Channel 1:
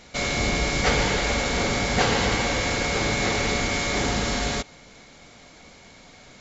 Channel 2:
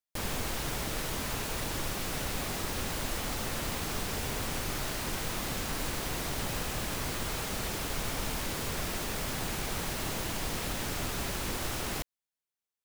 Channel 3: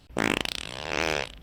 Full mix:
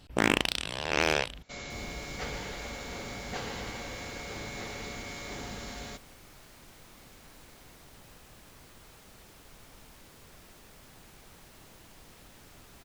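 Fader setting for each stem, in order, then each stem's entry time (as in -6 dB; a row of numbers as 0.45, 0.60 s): -16.0, -19.5, +0.5 dB; 1.35, 1.55, 0.00 s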